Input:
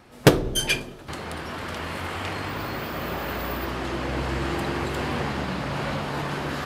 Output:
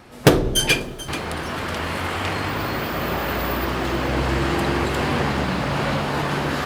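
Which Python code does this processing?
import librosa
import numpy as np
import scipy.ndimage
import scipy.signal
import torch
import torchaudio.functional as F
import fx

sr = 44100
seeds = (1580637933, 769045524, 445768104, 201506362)

p1 = 10.0 ** (-17.0 / 20.0) * (np.abs((x / 10.0 ** (-17.0 / 20.0) + 3.0) % 4.0 - 2.0) - 1.0)
p2 = x + (p1 * 10.0 ** (-4.0 / 20.0))
p3 = fx.echo_crushed(p2, sr, ms=435, feedback_pct=35, bits=7, wet_db=-15)
y = p3 * 10.0 ** (1.5 / 20.0)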